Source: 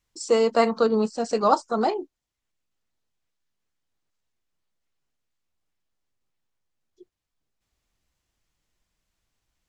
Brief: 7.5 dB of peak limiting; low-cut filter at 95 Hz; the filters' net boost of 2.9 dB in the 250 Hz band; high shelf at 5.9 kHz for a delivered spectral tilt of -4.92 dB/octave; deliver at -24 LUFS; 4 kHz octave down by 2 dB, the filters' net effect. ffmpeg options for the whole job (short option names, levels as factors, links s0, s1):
-af "highpass=95,equalizer=f=250:t=o:g=3.5,equalizer=f=4000:t=o:g=-6,highshelf=f=5900:g=8.5,alimiter=limit=0.237:level=0:latency=1"